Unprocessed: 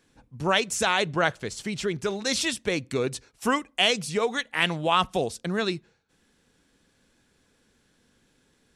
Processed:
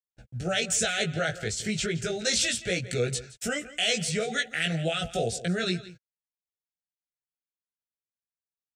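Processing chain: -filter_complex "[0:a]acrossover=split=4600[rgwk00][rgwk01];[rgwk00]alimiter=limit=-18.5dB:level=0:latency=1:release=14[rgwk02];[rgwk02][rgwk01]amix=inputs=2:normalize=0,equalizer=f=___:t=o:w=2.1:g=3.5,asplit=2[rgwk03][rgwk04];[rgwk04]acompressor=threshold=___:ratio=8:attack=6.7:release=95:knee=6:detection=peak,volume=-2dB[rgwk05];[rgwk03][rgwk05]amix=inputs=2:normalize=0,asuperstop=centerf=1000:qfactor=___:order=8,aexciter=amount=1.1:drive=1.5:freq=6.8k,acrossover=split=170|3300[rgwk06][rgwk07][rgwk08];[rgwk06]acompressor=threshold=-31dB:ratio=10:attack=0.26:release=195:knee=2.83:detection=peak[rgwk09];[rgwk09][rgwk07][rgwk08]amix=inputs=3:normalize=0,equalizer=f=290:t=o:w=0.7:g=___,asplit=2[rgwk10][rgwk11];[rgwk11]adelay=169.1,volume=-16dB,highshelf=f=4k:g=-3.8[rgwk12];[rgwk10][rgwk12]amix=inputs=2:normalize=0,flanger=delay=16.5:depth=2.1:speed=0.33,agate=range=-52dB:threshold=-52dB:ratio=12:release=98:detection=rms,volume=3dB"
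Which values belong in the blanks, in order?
88, -35dB, 1.8, -10.5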